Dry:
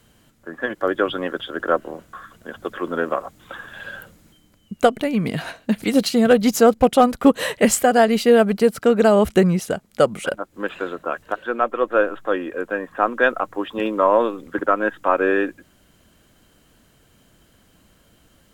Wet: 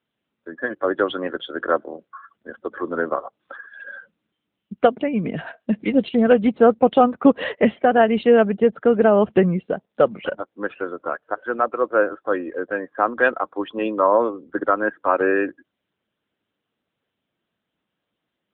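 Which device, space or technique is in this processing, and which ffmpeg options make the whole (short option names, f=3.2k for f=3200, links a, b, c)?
mobile call with aggressive noise cancelling: -af "highpass=170,afftdn=nr=21:nf=-34" -ar 8000 -c:a libopencore_amrnb -b:a 10200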